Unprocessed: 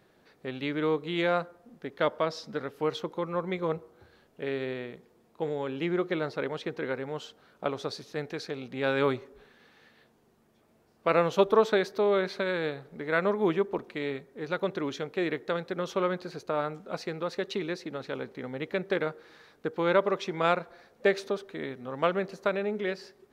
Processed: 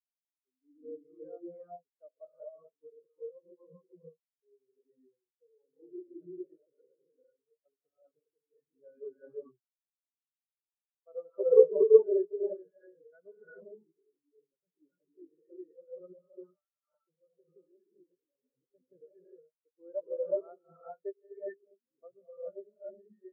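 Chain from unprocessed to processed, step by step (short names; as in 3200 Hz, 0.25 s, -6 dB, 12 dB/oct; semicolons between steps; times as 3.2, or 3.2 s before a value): 13.43–14.82 overloaded stage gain 31 dB; 16.14–16.72 HPF 930 Hz 12 dB/oct; non-linear reverb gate 0.45 s rising, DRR -4.5 dB; spectral expander 4:1; gain -1 dB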